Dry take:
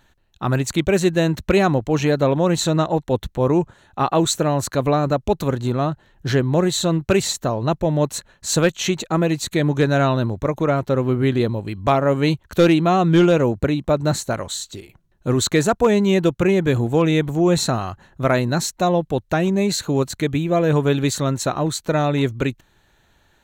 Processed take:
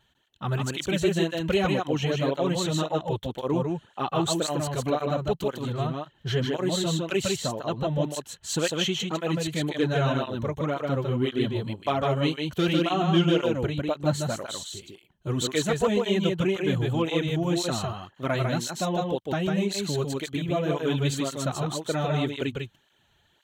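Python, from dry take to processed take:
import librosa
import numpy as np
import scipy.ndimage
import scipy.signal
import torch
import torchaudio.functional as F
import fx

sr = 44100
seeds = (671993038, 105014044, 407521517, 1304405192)

y = fx.peak_eq(x, sr, hz=3100.0, db=12.5, octaves=0.27)
y = y + 10.0 ** (-3.0 / 20.0) * np.pad(y, (int(151 * sr / 1000.0), 0))[:len(y)]
y = fx.flanger_cancel(y, sr, hz=1.9, depth_ms=4.2)
y = y * librosa.db_to_amplitude(-6.5)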